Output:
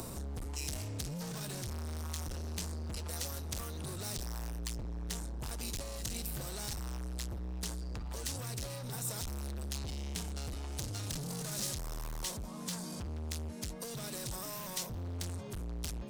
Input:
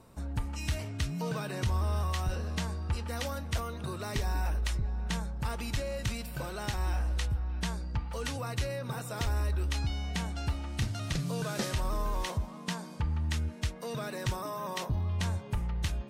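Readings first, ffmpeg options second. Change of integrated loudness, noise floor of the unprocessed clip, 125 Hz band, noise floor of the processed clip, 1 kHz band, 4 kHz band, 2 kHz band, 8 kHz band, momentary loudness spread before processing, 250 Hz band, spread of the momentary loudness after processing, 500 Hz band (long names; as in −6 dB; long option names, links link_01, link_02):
−5.5 dB, −45 dBFS, −8.0 dB, −43 dBFS, −10.0 dB, −3.0 dB, −9.5 dB, +3.5 dB, 5 LU, −5.5 dB, 3 LU, −7.5 dB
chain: -filter_complex "[0:a]tiltshelf=frequency=670:gain=4,acompressor=mode=upward:threshold=-29dB:ratio=2.5,asoftclip=type=hard:threshold=-35.5dB,bass=frequency=250:gain=-4,treble=frequency=4000:gain=12,acrossover=split=200|3000[link_01][link_02][link_03];[link_02]acompressor=threshold=-46dB:ratio=6[link_04];[link_01][link_04][link_03]amix=inputs=3:normalize=0,volume=1dB"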